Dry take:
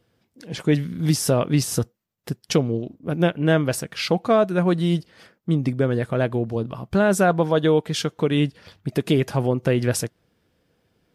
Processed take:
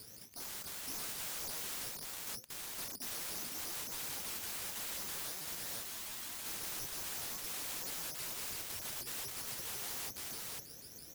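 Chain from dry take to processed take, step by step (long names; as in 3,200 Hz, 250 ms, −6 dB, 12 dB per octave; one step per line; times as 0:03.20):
reversed playback
downward compressor 16 to 1, threshold −29 dBFS, peak gain reduction 17.5 dB
reversed playback
bad sample-rate conversion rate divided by 8×, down none, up zero stuff
on a send: single-tap delay 514 ms −6 dB
on the sum: wave folding −35 dBFS
frozen spectrum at 0:05.85, 0.59 s
pitch modulation by a square or saw wave saw up 6.1 Hz, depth 250 cents
level +4.5 dB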